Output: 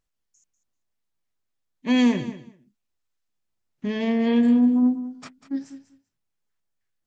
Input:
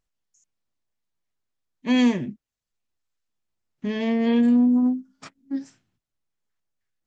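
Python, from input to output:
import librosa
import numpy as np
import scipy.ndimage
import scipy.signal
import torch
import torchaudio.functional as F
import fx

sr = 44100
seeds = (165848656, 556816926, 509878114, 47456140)

y = fx.echo_feedback(x, sr, ms=194, feedback_pct=16, wet_db=-13.5)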